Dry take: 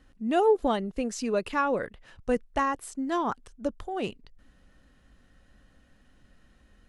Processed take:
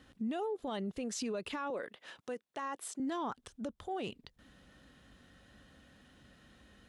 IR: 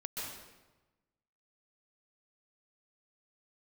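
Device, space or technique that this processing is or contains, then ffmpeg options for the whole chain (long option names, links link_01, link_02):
broadcast voice chain: -filter_complex "[0:a]highpass=79,deesser=0.6,acompressor=threshold=-35dB:ratio=3,equalizer=frequency=3500:width_type=o:width=0.43:gain=5.5,alimiter=level_in=9dB:limit=-24dB:level=0:latency=1:release=46,volume=-9dB,asettb=1/sr,asplit=3[link_01][link_02][link_03];[link_01]atrim=end=1.704[link_04];[link_02]atrim=start=1.7:end=3,asetpts=PTS-STARTPTS,afade=type=in:duration=0.004:curve=qsin,afade=type=out:start_time=1.296:duration=0.004:curve=qsin,highpass=300[link_05];[link_03]atrim=start=2.996[link_06];[link_04][link_05]acrossfade=duration=0.004:curve1=hsin:curve2=qsin[link_07];[link_07][link_06]acrossfade=duration=0.004:curve1=qsin:curve2=hsin,volume=2.5dB"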